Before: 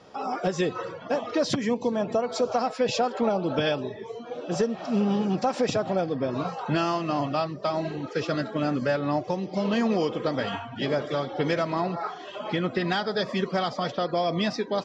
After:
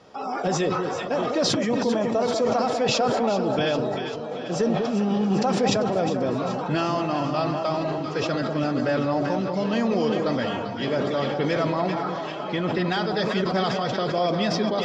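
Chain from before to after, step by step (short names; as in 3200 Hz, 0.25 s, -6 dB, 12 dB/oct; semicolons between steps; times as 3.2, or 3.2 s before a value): on a send: echo with dull and thin repeats by turns 0.196 s, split 1000 Hz, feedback 74%, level -6 dB; on the sum: sustainer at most 21 dB/s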